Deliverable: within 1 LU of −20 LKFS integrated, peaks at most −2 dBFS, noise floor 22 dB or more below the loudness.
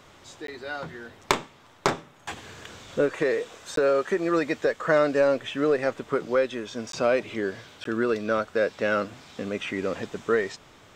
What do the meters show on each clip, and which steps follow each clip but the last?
number of dropouts 4; longest dropout 13 ms; integrated loudness −26.5 LKFS; sample peak −4.0 dBFS; target loudness −20.0 LKFS
→ repair the gap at 0:00.47/0:03.76/0:06.92/0:07.84, 13 ms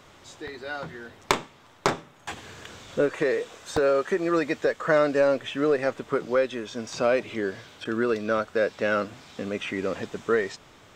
number of dropouts 0; integrated loudness −26.5 LKFS; sample peak −4.0 dBFS; target loudness −20.0 LKFS
→ level +6.5 dB
brickwall limiter −2 dBFS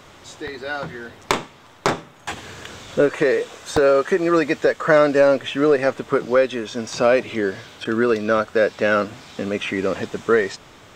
integrated loudness −20.0 LKFS; sample peak −2.0 dBFS; background noise floor −47 dBFS

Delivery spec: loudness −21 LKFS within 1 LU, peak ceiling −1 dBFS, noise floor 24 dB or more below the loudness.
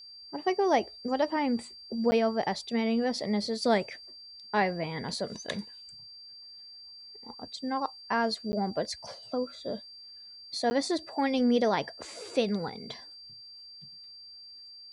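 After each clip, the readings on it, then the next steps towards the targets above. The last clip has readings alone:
number of dropouts 3; longest dropout 10 ms; interfering tone 4,700 Hz; level of the tone −46 dBFS; integrated loudness −30.5 LKFS; sample peak −13.0 dBFS; target loudness −21.0 LKFS
→ repair the gap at 0:02.11/0:08.52/0:10.70, 10 ms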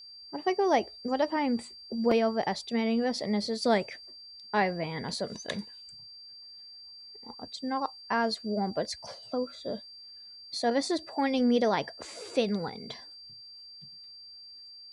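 number of dropouts 0; interfering tone 4,700 Hz; level of the tone −46 dBFS
→ notch filter 4,700 Hz, Q 30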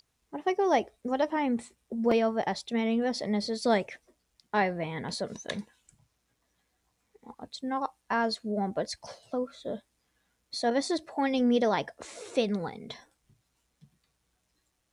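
interfering tone none found; integrated loudness −30.0 LKFS; sample peak −11.5 dBFS; target loudness −21.0 LKFS
→ level +9 dB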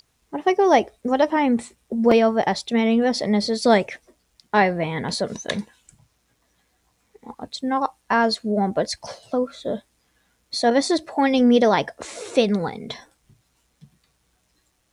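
integrated loudness −21.5 LKFS; sample peak −2.5 dBFS; background noise floor −68 dBFS

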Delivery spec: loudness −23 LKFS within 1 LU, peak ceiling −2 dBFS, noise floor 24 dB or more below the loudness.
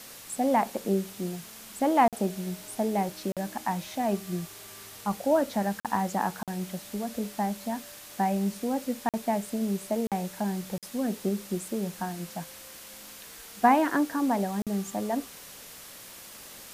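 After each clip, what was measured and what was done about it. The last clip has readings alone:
number of dropouts 8; longest dropout 47 ms; background noise floor −46 dBFS; target noise floor −54 dBFS; integrated loudness −29.5 LKFS; sample peak −9.5 dBFS; target loudness −23.0 LKFS
→ repair the gap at 0:02.08/0:03.32/0:05.80/0:06.43/0:09.09/0:10.07/0:10.78/0:14.62, 47 ms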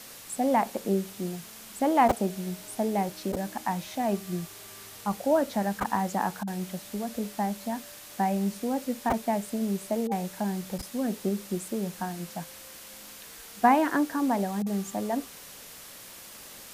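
number of dropouts 0; background noise floor −46 dBFS; target noise floor −53 dBFS
→ broadband denoise 7 dB, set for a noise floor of −46 dBFS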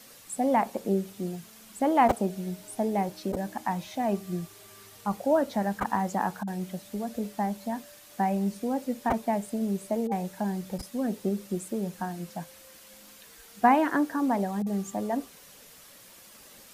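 background noise floor −52 dBFS; target noise floor −54 dBFS
→ broadband denoise 6 dB, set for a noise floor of −52 dBFS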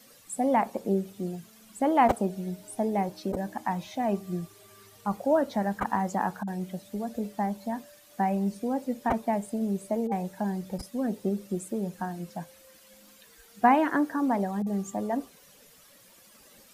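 background noise floor −56 dBFS; integrated loudness −29.5 LKFS; sample peak −9.5 dBFS; target loudness −23.0 LKFS
→ level +6.5 dB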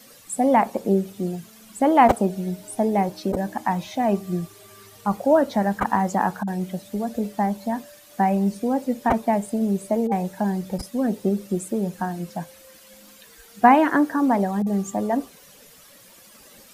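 integrated loudness −23.0 LKFS; sample peak −3.0 dBFS; background noise floor −50 dBFS

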